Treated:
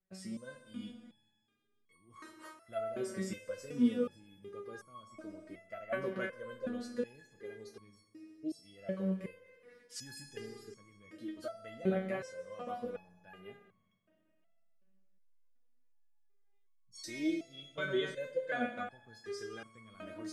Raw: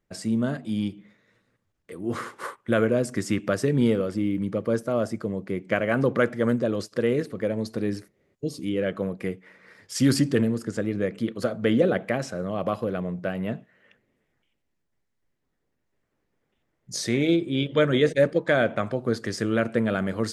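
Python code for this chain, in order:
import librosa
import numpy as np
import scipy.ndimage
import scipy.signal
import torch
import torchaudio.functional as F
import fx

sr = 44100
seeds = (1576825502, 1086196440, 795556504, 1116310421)

y = fx.rev_schroeder(x, sr, rt60_s=2.1, comb_ms=28, drr_db=8.5)
y = fx.resonator_held(y, sr, hz=2.7, low_hz=190.0, high_hz=1100.0)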